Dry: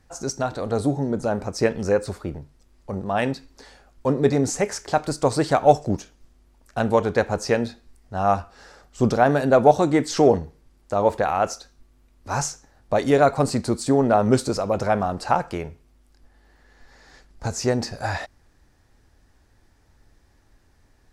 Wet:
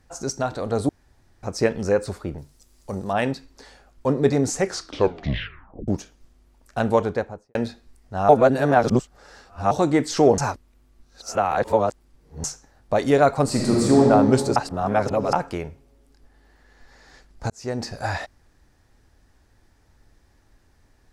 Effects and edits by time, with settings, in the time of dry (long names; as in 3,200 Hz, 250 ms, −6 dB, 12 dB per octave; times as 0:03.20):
0:00.89–0:01.43: fill with room tone
0:02.38–0:03.13: bass and treble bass −1 dB, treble +13 dB
0:04.57: tape stop 1.31 s
0:06.92–0:07.55: fade out and dull
0:08.29–0:09.71: reverse
0:10.38–0:12.44: reverse
0:13.45–0:14.00: thrown reverb, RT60 2.4 s, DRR −3.5 dB
0:14.56–0:15.33: reverse
0:17.50–0:17.94: fade in